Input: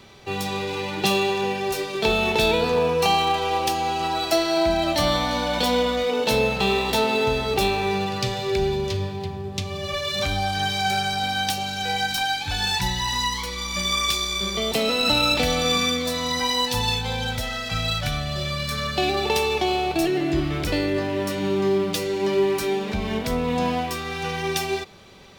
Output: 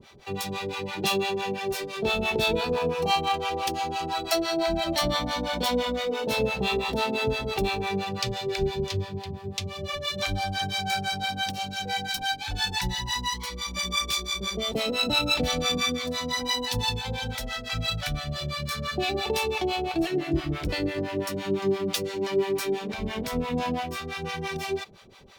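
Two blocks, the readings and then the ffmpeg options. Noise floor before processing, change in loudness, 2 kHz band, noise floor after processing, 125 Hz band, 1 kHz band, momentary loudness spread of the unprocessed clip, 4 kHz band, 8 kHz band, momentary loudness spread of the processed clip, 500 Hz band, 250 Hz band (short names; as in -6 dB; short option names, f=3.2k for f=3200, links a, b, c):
-31 dBFS, -5.0 dB, -4.5 dB, -37 dBFS, -4.5 dB, -5.5 dB, 7 LU, -4.5 dB, -4.0 dB, 7 LU, -5.5 dB, -4.5 dB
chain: -filter_complex "[0:a]acrossover=split=600[a][b];[a]aeval=exprs='val(0)*(1-1/2+1/2*cos(2*PI*5.9*n/s))':c=same[c];[b]aeval=exprs='val(0)*(1-1/2-1/2*cos(2*PI*5.9*n/s))':c=same[d];[c][d]amix=inputs=2:normalize=0"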